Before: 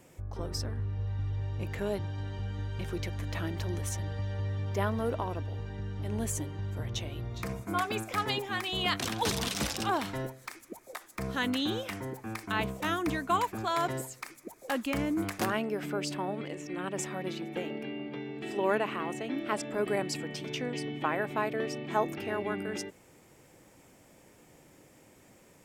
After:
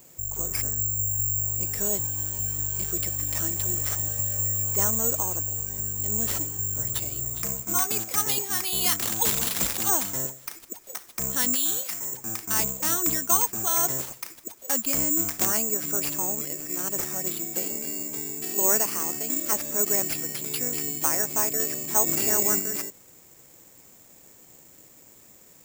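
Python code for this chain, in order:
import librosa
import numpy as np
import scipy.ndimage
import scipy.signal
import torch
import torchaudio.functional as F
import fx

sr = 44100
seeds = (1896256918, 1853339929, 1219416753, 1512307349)

y = (np.kron(x[::6], np.eye(6)[0]) * 6)[:len(x)]
y = fx.low_shelf(y, sr, hz=480.0, db=-11.5, at=(11.55, 12.14))
y = fx.env_flatten(y, sr, amount_pct=50, at=(22.06, 22.58), fade=0.02)
y = y * 10.0 ** (-1.5 / 20.0)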